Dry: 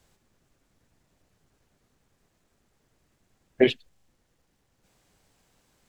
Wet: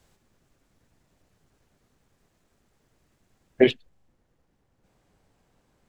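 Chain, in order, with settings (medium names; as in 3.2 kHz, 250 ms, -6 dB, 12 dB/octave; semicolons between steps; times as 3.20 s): treble shelf 2.1 kHz -2 dB, from 3.71 s -11 dB; trim +2 dB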